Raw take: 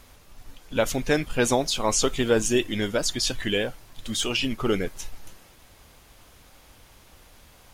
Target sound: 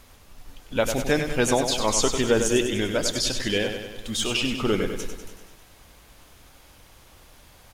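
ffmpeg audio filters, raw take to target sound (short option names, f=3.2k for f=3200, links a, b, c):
-af "aecho=1:1:98|196|294|392|490|588|686|784:0.422|0.249|0.147|0.0866|0.0511|0.0301|0.0178|0.0105"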